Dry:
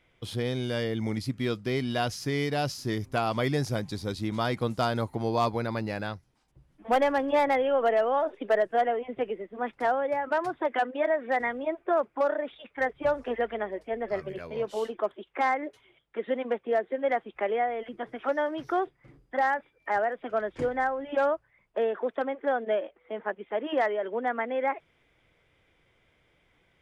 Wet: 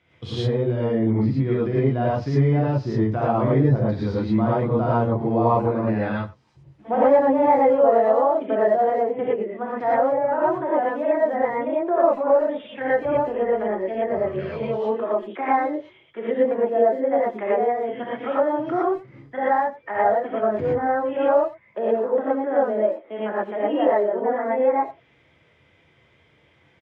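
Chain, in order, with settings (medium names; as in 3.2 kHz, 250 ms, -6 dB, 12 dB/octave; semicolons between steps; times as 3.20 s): low-pass 5.6 kHz 12 dB/octave; low-pass that closes with the level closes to 1 kHz, closed at -26 dBFS; high-pass 81 Hz 24 dB/octave; tone controls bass +4 dB, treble +1 dB; speakerphone echo 90 ms, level -18 dB; gated-style reverb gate 140 ms rising, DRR -7.5 dB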